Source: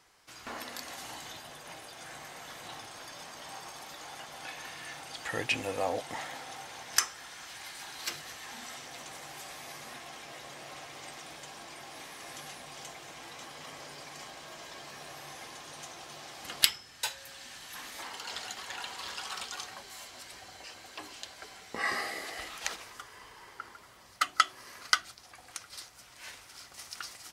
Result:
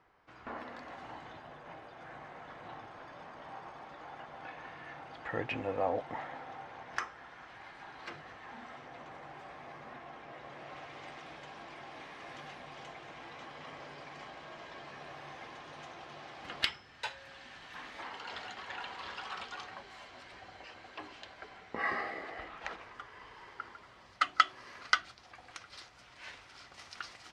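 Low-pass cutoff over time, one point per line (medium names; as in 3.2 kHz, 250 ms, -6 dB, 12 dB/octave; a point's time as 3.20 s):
10.23 s 1.6 kHz
10.90 s 2.6 kHz
21.16 s 2.6 kHz
22.56 s 1.6 kHz
23.40 s 3.6 kHz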